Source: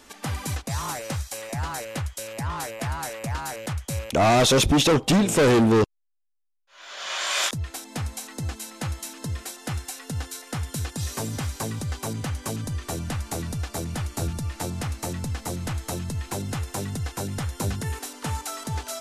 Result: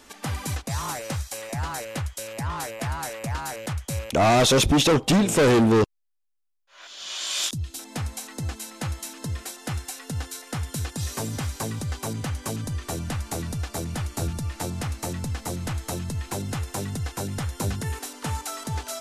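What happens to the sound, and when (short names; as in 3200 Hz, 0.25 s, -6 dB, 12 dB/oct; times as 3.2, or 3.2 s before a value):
6.87–7.79 band shelf 1000 Hz -11.5 dB 2.7 oct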